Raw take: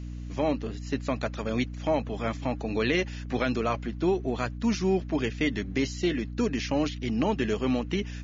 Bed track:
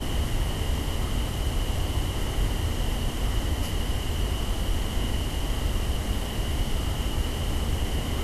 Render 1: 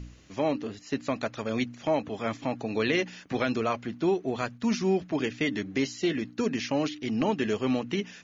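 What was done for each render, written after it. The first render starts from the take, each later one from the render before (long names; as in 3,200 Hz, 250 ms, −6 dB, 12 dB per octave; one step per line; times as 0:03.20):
hum removal 60 Hz, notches 5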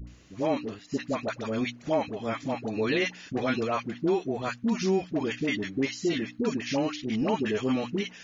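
all-pass dispersion highs, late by 73 ms, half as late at 740 Hz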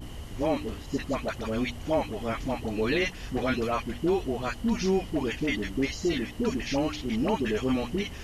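mix in bed track −13.5 dB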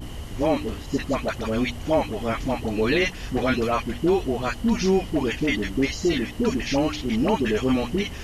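level +5 dB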